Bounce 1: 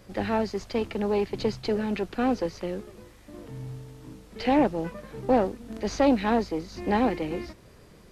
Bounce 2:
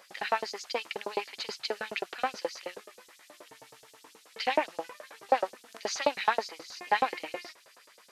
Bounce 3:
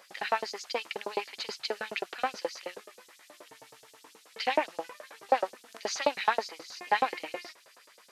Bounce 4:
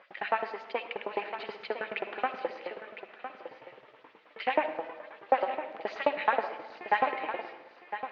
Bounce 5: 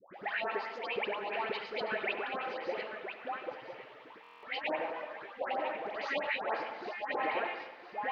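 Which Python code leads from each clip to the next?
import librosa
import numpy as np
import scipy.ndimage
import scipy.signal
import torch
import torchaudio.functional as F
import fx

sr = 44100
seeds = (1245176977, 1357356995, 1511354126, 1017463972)

y1 = fx.filter_lfo_highpass(x, sr, shape='saw_up', hz=9.4, low_hz=580.0, high_hz=7200.0, q=1.4)
y1 = y1 * 10.0 ** (2.0 / 20.0)
y2 = fx.low_shelf(y1, sr, hz=68.0, db=-8.0)
y3 = scipy.signal.sosfilt(scipy.signal.butter(4, 2800.0, 'lowpass', fs=sr, output='sos'), y2)
y3 = y3 + 10.0 ** (-10.5 / 20.0) * np.pad(y3, (int(1008 * sr / 1000.0), 0))[:len(y3)]
y3 = fx.rev_freeverb(y3, sr, rt60_s=1.2, hf_ratio=0.5, predelay_ms=25, drr_db=9.5)
y4 = fx.over_compress(y3, sr, threshold_db=-34.0, ratio=-0.5)
y4 = fx.dispersion(y4, sr, late='highs', ms=149.0, hz=1100.0)
y4 = fx.buffer_glitch(y4, sr, at_s=(4.22,), block=1024, repeats=8)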